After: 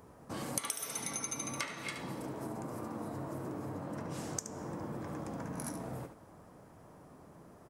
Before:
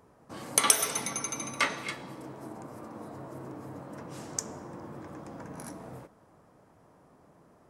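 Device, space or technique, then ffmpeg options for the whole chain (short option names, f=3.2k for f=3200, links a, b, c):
ASMR close-microphone chain: -filter_complex "[0:a]asettb=1/sr,asplit=3[a][b][c];[a]atrim=end=3.624[d];[b]atrim=start=3.62:end=4.19,asetpts=PTS-STARTPTS,afade=t=in:d=0.004:c=qsin,afade=t=out:st=0.566:d=0.004:c=qsin,highshelf=f=8.4k:g=-5.5[e];[c]atrim=start=4.186[f];[d][e]acrossfade=d=0.004:c1=hsin:c2=qsin[g];[g][f]acrossfade=d=0.004:c1=qsin:c2=hsin,lowshelf=f=240:g=4,aecho=1:1:72:0.335,acompressor=threshold=-38dB:ratio=10,highshelf=f=8.3k:g=6,volume=2dB"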